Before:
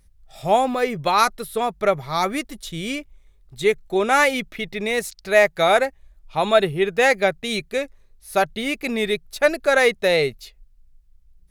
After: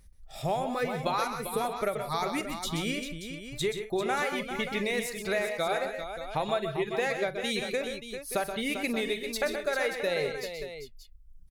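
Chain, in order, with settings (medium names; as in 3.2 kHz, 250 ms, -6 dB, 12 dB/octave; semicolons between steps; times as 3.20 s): reverb removal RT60 1.1 s; compression 6:1, threshold -28 dBFS, peak gain reduction 16.5 dB; multi-tap echo 45/127/151/179/395/580 ms -15.5/-8/-16.5/-17.5/-9/-11.5 dB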